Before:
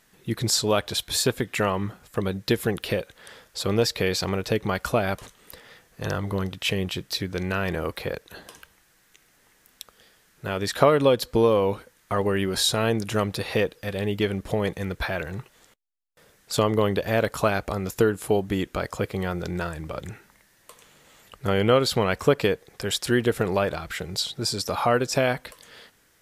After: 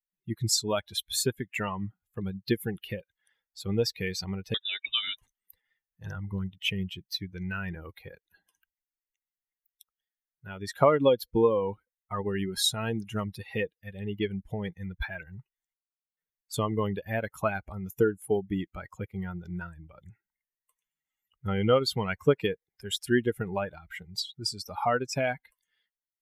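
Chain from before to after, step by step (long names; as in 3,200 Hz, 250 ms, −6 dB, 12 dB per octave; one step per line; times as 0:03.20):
spectral dynamics exaggerated over time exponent 2
0:04.54–0:05.17: voice inversion scrambler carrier 3,700 Hz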